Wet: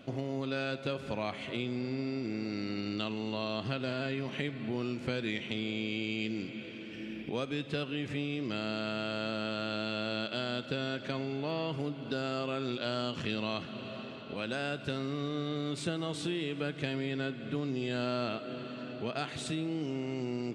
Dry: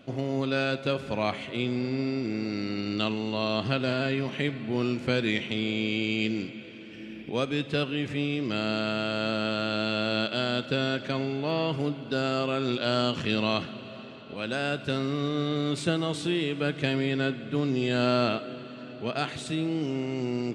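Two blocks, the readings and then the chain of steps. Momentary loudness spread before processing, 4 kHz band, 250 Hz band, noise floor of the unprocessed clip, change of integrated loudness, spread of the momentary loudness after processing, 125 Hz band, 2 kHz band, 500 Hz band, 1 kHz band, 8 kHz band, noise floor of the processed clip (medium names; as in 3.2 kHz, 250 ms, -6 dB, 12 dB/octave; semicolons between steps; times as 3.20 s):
6 LU, -7.0 dB, -6.5 dB, -42 dBFS, -7.0 dB, 3 LU, -6.5 dB, -7.0 dB, -7.0 dB, -7.0 dB, -4.5 dB, -44 dBFS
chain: compression 2.5:1, threshold -34 dBFS, peak gain reduction 9.5 dB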